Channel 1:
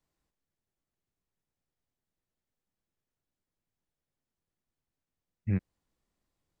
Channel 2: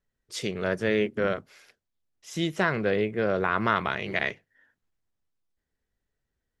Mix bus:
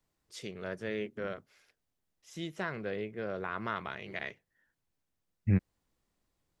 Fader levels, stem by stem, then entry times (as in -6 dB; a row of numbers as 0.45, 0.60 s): +2.5, -11.5 dB; 0.00, 0.00 s